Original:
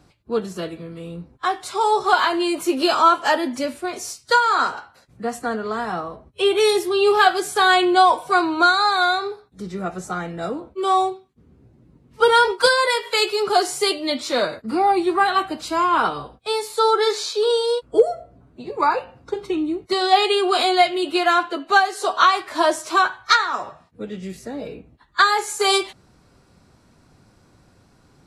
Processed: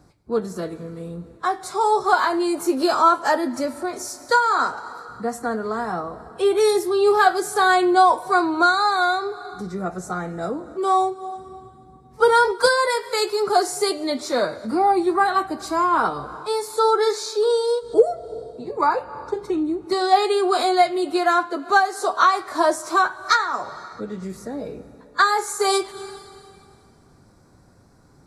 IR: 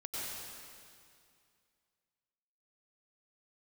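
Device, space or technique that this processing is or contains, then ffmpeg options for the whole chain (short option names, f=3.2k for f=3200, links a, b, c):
ducked reverb: -filter_complex "[0:a]asplit=3[a][b][c];[1:a]atrim=start_sample=2205[d];[b][d]afir=irnorm=-1:irlink=0[e];[c]apad=whole_len=1246704[f];[e][f]sidechaincompress=threshold=-33dB:ratio=8:attack=6.3:release=171,volume=-13dB[g];[a][g]amix=inputs=2:normalize=0,equalizer=f=2.9k:t=o:w=0.67:g=-14.5"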